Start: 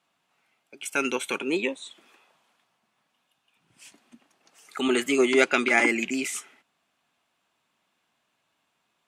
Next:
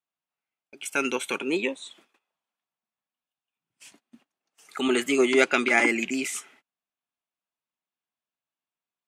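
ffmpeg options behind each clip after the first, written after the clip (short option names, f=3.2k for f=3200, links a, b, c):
-af "agate=range=-22dB:threshold=-55dB:ratio=16:detection=peak"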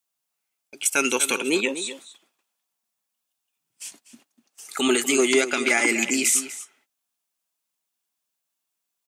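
-filter_complex "[0:a]bass=f=250:g=-2,treble=f=4k:g=12,alimiter=limit=-12dB:level=0:latency=1:release=165,asplit=2[a][b];[b]adelay=244.9,volume=-12dB,highshelf=f=4k:g=-5.51[c];[a][c]amix=inputs=2:normalize=0,volume=3.5dB"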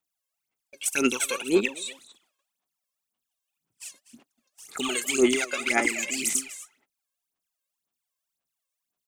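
-af "aphaser=in_gain=1:out_gain=1:delay=1.9:decay=0.79:speed=1.9:type=sinusoidal,volume=-8.5dB"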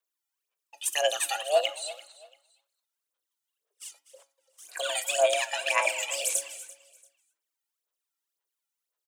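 -af "aecho=1:1:340|680:0.106|0.0307,afreqshift=290,flanger=delay=7.1:depth=2.6:regen=87:speed=0.24:shape=triangular,volume=2.5dB"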